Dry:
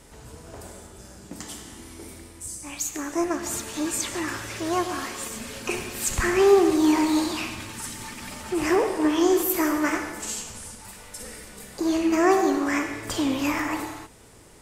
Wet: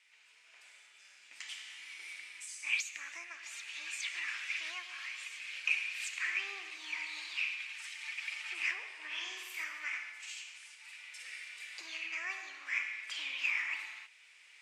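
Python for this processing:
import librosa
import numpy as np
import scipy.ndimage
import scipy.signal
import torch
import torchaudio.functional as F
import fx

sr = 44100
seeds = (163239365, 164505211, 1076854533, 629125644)

y = fx.recorder_agc(x, sr, target_db=-11.5, rise_db_per_s=5.6, max_gain_db=30)
y = fx.ladder_bandpass(y, sr, hz=2600.0, resonance_pct=65)
y = fx.room_flutter(y, sr, wall_m=8.2, rt60_s=0.77, at=(9.1, 9.63), fade=0.02)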